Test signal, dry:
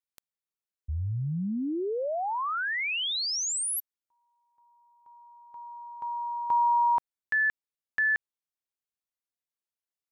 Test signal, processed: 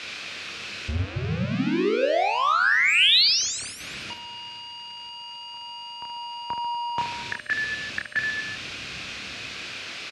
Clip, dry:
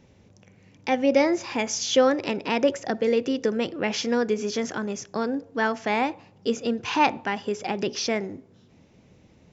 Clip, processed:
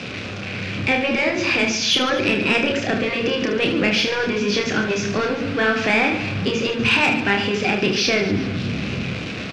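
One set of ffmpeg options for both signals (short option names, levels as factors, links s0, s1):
-filter_complex "[0:a]aeval=exprs='val(0)+0.5*0.0282*sgn(val(0))':c=same,aemphasis=mode=production:type=50kf,acrossover=split=200[s0][s1];[s0]dynaudnorm=f=170:g=9:m=4.22[s2];[s2][s1]amix=inputs=2:normalize=0,highpass=100,equalizer=f=150:t=q:w=4:g=-6,equalizer=f=900:t=q:w=4:g=-8,equalizer=f=1500:t=q:w=4:g=4,equalizer=f=2500:t=q:w=4:g=9,lowpass=f=4400:w=0.5412,lowpass=f=4400:w=1.3066,asplit=2[s3][s4];[s4]alimiter=limit=0.224:level=0:latency=1:release=361,volume=1.26[s5];[s3][s5]amix=inputs=2:normalize=0,asoftclip=type=tanh:threshold=0.562,aecho=1:1:30|75|142.5|243.8|395.6:0.631|0.398|0.251|0.158|0.1,afftfilt=real='re*lt(hypot(re,im),1.78)':imag='im*lt(hypot(re,im),1.78)':win_size=1024:overlap=0.75,volume=0.75"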